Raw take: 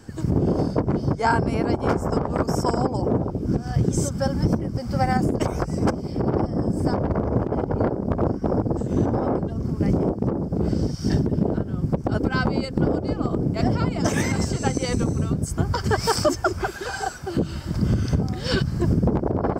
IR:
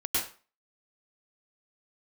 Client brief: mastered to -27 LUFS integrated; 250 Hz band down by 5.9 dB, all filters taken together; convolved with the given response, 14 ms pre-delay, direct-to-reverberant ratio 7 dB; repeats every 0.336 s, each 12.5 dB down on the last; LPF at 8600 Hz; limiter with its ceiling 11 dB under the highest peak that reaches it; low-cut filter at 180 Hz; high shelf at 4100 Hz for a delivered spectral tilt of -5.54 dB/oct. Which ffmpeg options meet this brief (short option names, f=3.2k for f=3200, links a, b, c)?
-filter_complex "[0:a]highpass=180,lowpass=8.6k,equalizer=f=250:t=o:g=-6,highshelf=f=4.1k:g=-4,alimiter=limit=-19.5dB:level=0:latency=1,aecho=1:1:336|672|1008:0.237|0.0569|0.0137,asplit=2[a][b];[1:a]atrim=start_sample=2205,adelay=14[c];[b][c]afir=irnorm=-1:irlink=0,volume=-15dB[d];[a][d]amix=inputs=2:normalize=0,volume=2.5dB"